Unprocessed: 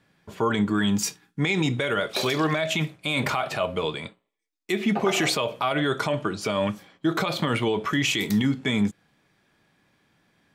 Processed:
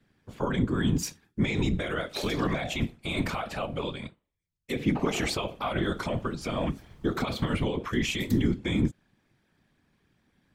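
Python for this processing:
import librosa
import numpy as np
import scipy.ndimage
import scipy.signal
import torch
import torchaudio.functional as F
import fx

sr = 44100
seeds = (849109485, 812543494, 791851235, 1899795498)

y = fx.bass_treble(x, sr, bass_db=8, treble_db=0)
y = fx.dmg_noise_colour(y, sr, seeds[0], colour='brown', level_db=-42.0, at=(5.8, 7.59), fade=0.02)
y = fx.whisperise(y, sr, seeds[1])
y = y * 10.0 ** (-7.0 / 20.0)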